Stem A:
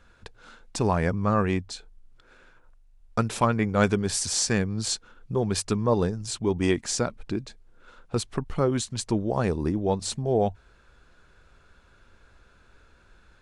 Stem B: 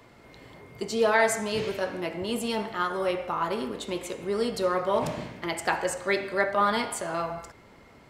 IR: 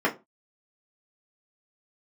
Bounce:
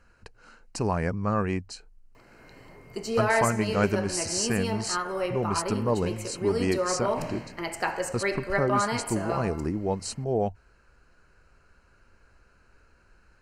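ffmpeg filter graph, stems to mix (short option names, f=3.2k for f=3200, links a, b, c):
-filter_complex "[0:a]volume=-3dB[a];[1:a]adelay=2150,volume=-2dB[b];[a][b]amix=inputs=2:normalize=0,asuperstop=centerf=3500:order=4:qfactor=4.4"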